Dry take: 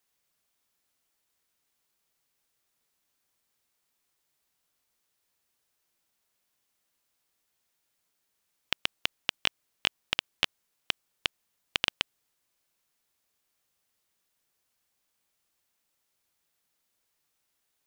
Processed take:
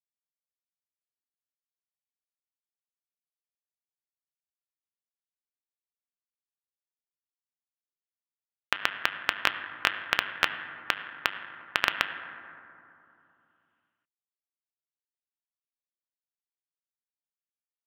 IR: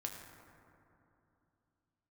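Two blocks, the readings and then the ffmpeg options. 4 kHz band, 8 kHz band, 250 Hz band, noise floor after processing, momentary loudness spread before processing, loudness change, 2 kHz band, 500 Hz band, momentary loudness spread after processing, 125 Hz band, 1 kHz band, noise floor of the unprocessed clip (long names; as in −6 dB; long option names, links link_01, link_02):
−2.0 dB, −1.0 dB, +2.0 dB, below −85 dBFS, 6 LU, +2.5 dB, +7.0 dB, +4.5 dB, 14 LU, −0.5 dB, +10.0 dB, −79 dBFS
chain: -filter_complex "[0:a]equalizer=frequency=1600:width_type=o:width=1.6:gain=12,acrusher=bits=5:dc=4:mix=0:aa=0.000001,asplit=2[link_01][link_02];[link_02]highpass=210,equalizer=frequency=480:width_type=q:width=4:gain=-6,equalizer=frequency=750:width_type=q:width=4:gain=-4,equalizer=frequency=2300:width_type=q:width=4:gain=-7,lowpass=frequency=2900:width=0.5412,lowpass=frequency=2900:width=1.3066[link_03];[1:a]atrim=start_sample=2205[link_04];[link_03][link_04]afir=irnorm=-1:irlink=0,volume=2.5dB[link_05];[link_01][link_05]amix=inputs=2:normalize=0,volume=-3dB"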